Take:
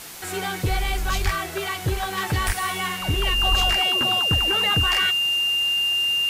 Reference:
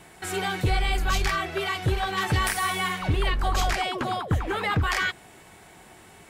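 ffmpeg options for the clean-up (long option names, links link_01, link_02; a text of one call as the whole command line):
ffmpeg -i in.wav -filter_complex "[0:a]adeclick=threshold=4,bandreject=frequency=2800:width=30,asplit=3[link_01][link_02][link_03];[link_01]afade=type=out:start_time=1.24:duration=0.02[link_04];[link_02]highpass=frequency=140:width=0.5412,highpass=frequency=140:width=1.3066,afade=type=in:start_time=1.24:duration=0.02,afade=type=out:start_time=1.36:duration=0.02[link_05];[link_03]afade=type=in:start_time=1.36:duration=0.02[link_06];[link_04][link_05][link_06]amix=inputs=3:normalize=0,asplit=3[link_07][link_08][link_09];[link_07]afade=type=out:start_time=2.46:duration=0.02[link_10];[link_08]highpass=frequency=140:width=0.5412,highpass=frequency=140:width=1.3066,afade=type=in:start_time=2.46:duration=0.02,afade=type=out:start_time=2.58:duration=0.02[link_11];[link_09]afade=type=in:start_time=2.58:duration=0.02[link_12];[link_10][link_11][link_12]amix=inputs=3:normalize=0,asplit=3[link_13][link_14][link_15];[link_13]afade=type=out:start_time=3.5:duration=0.02[link_16];[link_14]highpass=frequency=140:width=0.5412,highpass=frequency=140:width=1.3066,afade=type=in:start_time=3.5:duration=0.02,afade=type=out:start_time=3.62:duration=0.02[link_17];[link_15]afade=type=in:start_time=3.62:duration=0.02[link_18];[link_16][link_17][link_18]amix=inputs=3:normalize=0,afwtdn=0.013" out.wav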